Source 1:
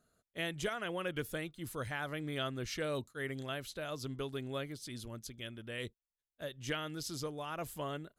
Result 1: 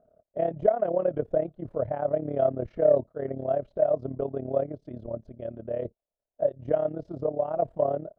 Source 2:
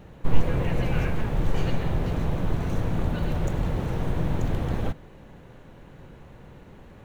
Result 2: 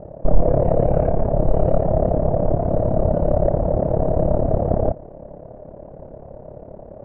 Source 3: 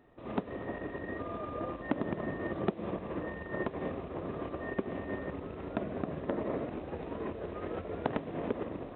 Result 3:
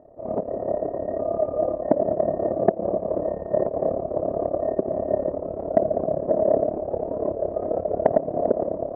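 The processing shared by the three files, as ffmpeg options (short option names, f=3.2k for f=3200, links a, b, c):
-af "lowpass=f=630:t=q:w=7.8,tremolo=f=35:d=0.788,acontrast=89,volume=1dB"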